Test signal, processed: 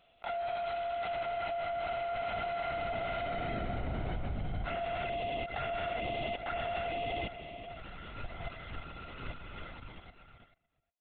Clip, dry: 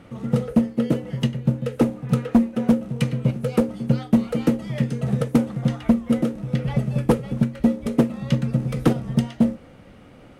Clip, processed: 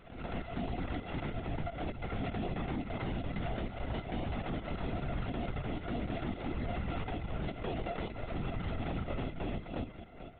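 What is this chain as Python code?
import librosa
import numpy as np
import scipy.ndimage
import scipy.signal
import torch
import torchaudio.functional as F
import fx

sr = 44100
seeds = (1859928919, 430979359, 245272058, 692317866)

p1 = np.r_[np.sort(x[:len(x) // 64 * 64].reshape(-1, 64), axis=1).ravel(), x[len(x) // 64 * 64:]]
p2 = np.repeat(p1[::6], 6)[:len(p1)]
p3 = fx.peak_eq(p2, sr, hz=2500.0, db=2.0, octaves=0.27)
p4 = p3 + fx.echo_single(p3, sr, ms=358, db=-22.5, dry=0)
p5 = fx.env_flanger(p4, sr, rest_ms=8.4, full_db=-14.5)
p6 = fx.echo_multitap(p5, sr, ms=(350, 359, 804), db=(-17.5, -7.5, -16.0))
p7 = np.clip(p6, -10.0 ** (-23.0 / 20.0), 10.0 ** (-23.0 / 20.0))
p8 = fx.level_steps(p7, sr, step_db=10)
p9 = fx.hpss(p8, sr, part='harmonic', gain_db=3)
p10 = fx.air_absorb(p9, sr, metres=130.0)
p11 = fx.lpc_vocoder(p10, sr, seeds[0], excitation='whisper', order=16)
p12 = fx.pre_swell(p11, sr, db_per_s=92.0)
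y = p12 * librosa.db_to_amplitude(-7.5)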